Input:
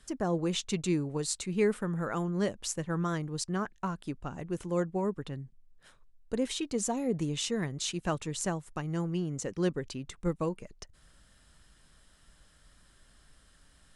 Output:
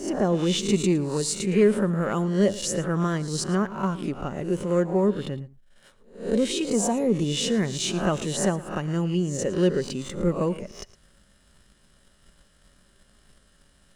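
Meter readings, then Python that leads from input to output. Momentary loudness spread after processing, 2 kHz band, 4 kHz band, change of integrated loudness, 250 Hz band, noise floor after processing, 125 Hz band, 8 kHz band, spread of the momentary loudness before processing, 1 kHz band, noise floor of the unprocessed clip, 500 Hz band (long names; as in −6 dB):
8 LU, +6.0 dB, +7.5 dB, +8.0 dB, +8.5 dB, −60 dBFS, +7.5 dB, +6.5 dB, 9 LU, +6.0 dB, −62 dBFS, +9.0 dB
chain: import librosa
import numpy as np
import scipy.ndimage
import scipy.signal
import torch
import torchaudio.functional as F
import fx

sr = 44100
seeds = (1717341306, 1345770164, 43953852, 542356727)

p1 = fx.spec_swells(x, sr, rise_s=0.47)
p2 = fx.leveller(p1, sr, passes=1)
p3 = fx.small_body(p2, sr, hz=(210.0, 390.0, 550.0, 2900.0), ring_ms=40, db=7)
y = p3 + fx.echo_single(p3, sr, ms=112, db=-18.0, dry=0)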